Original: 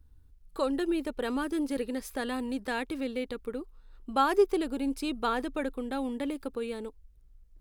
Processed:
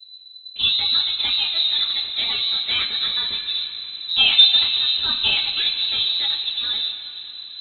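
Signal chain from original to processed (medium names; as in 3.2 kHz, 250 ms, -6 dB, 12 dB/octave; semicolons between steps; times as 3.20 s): octave divider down 2 oct, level +1 dB; frequency inversion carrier 4 kHz; two-slope reverb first 0.22 s, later 4.2 s, from -20 dB, DRR -9 dB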